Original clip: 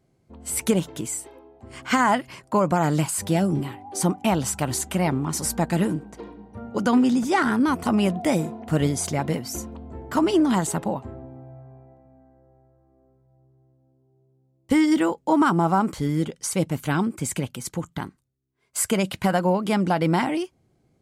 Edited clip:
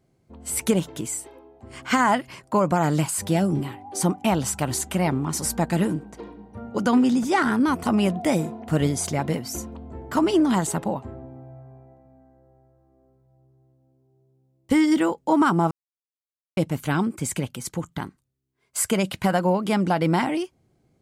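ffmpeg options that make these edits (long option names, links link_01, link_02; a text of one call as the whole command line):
ffmpeg -i in.wav -filter_complex "[0:a]asplit=3[link_01][link_02][link_03];[link_01]atrim=end=15.71,asetpts=PTS-STARTPTS,afade=type=out:start_time=15.706:duration=0.004:curve=hsin[link_04];[link_02]atrim=start=15.71:end=16.57,asetpts=PTS-STARTPTS,volume=0[link_05];[link_03]atrim=start=16.57,asetpts=PTS-STARTPTS,afade=type=in:duration=0.004:curve=hsin[link_06];[link_04][link_05][link_06]concat=n=3:v=0:a=1" out.wav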